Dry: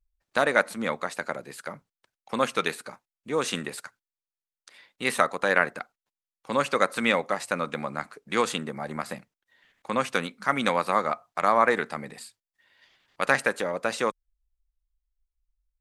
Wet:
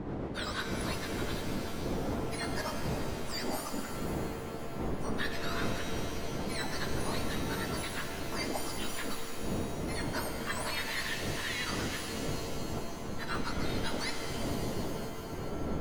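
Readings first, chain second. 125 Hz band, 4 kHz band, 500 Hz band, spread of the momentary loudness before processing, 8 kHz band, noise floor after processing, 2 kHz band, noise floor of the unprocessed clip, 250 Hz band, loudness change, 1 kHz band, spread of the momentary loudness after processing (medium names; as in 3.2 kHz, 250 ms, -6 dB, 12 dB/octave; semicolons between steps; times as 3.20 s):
+5.0 dB, -1.5 dB, -9.5 dB, 17 LU, -1.0 dB, -39 dBFS, -10.0 dB, under -85 dBFS, -2.0 dB, -9.0 dB, -11.5 dB, 4 LU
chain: spectrum inverted on a logarithmic axis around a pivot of 1.5 kHz; wind noise 360 Hz -28 dBFS; reverse; compression, threshold -30 dBFS, peak gain reduction 15.5 dB; reverse; pitch-shifted reverb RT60 2.9 s, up +7 st, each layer -2 dB, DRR 4.5 dB; trim -3.5 dB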